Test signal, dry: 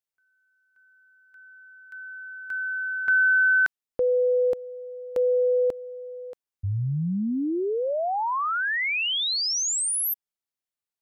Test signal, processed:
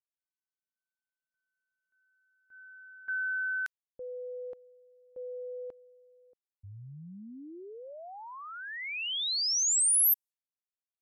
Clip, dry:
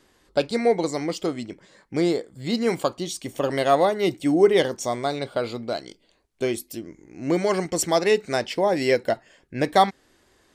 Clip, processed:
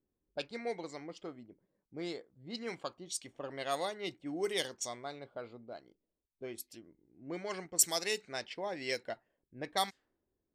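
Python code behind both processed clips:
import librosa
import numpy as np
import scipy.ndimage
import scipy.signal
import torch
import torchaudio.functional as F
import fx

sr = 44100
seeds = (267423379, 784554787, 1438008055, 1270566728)

y = librosa.effects.preemphasis(x, coef=0.9, zi=[0.0])
y = fx.env_lowpass(y, sr, base_hz=310.0, full_db=-29.0)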